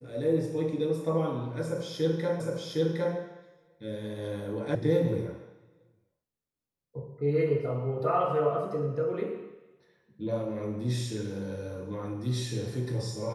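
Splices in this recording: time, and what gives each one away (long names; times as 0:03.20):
0:02.40: the same again, the last 0.76 s
0:04.75: cut off before it has died away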